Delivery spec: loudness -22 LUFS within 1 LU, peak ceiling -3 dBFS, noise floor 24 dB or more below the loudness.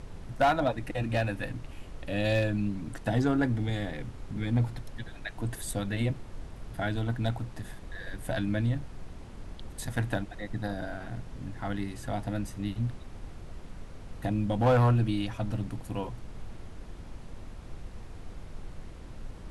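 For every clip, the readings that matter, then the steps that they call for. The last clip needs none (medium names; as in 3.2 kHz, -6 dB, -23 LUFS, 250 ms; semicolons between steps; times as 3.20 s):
clipped samples 0.3%; clipping level -18.0 dBFS; noise floor -45 dBFS; noise floor target -56 dBFS; loudness -31.5 LUFS; peak level -18.0 dBFS; loudness target -22.0 LUFS
-> clip repair -18 dBFS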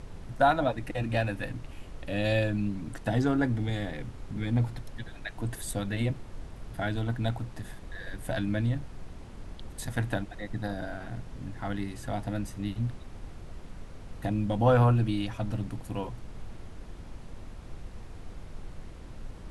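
clipped samples 0.0%; noise floor -45 dBFS; noise floor target -55 dBFS
-> noise print and reduce 10 dB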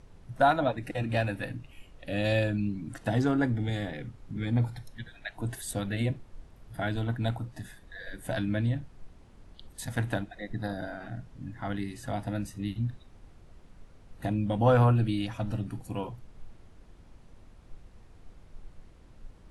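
noise floor -54 dBFS; noise floor target -55 dBFS
-> noise print and reduce 6 dB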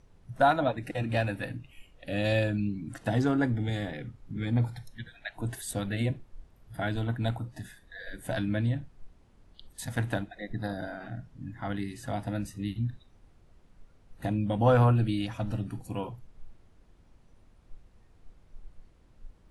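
noise floor -60 dBFS; loudness -31.0 LUFS; peak level -11.0 dBFS; loudness target -22.0 LUFS
-> trim +9 dB; peak limiter -3 dBFS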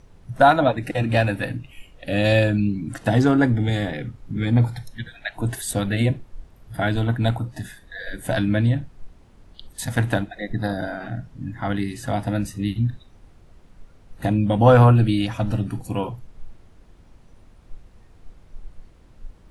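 loudness -22.0 LUFS; peak level -3.0 dBFS; noise floor -51 dBFS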